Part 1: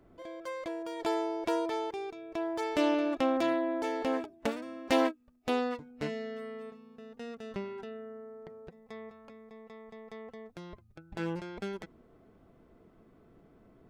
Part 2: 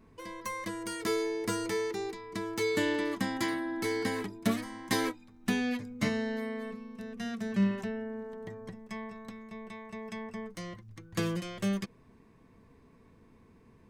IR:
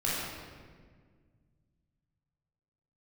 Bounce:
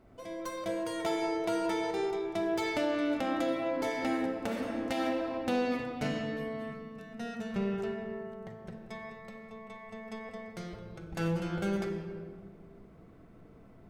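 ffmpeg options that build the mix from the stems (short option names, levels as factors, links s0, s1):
-filter_complex "[0:a]volume=0.631,asplit=2[s0][s1];[s1]volume=0.596[s2];[1:a]alimiter=limit=0.0668:level=0:latency=1,volume=0.422,asplit=2[s3][s4];[s4]volume=0.211[s5];[2:a]atrim=start_sample=2205[s6];[s2][s5]amix=inputs=2:normalize=0[s7];[s7][s6]afir=irnorm=-1:irlink=0[s8];[s0][s3][s8]amix=inputs=3:normalize=0,alimiter=limit=0.0891:level=0:latency=1:release=334"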